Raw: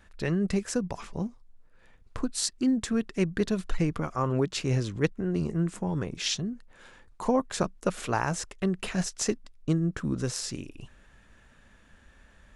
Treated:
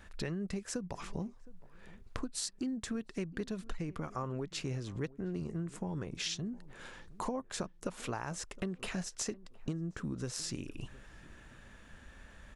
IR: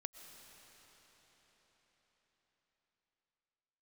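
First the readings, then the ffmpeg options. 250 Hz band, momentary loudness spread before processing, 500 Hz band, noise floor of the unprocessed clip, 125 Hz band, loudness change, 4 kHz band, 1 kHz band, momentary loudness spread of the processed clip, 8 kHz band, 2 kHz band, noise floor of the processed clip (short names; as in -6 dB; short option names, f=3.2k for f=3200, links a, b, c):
-10.5 dB, 8 LU, -11.0 dB, -58 dBFS, -10.0 dB, -10.0 dB, -7.5 dB, -10.0 dB, 18 LU, -7.0 dB, -8.5 dB, -57 dBFS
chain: -filter_complex "[0:a]acompressor=threshold=-38dB:ratio=6,asplit=2[a][b];[b]adelay=714,lowpass=f=970:p=1,volume=-20dB,asplit=2[c][d];[d]adelay=714,lowpass=f=970:p=1,volume=0.33,asplit=2[e][f];[f]adelay=714,lowpass=f=970:p=1,volume=0.33[g];[c][e][g]amix=inputs=3:normalize=0[h];[a][h]amix=inputs=2:normalize=0,volume=2.5dB"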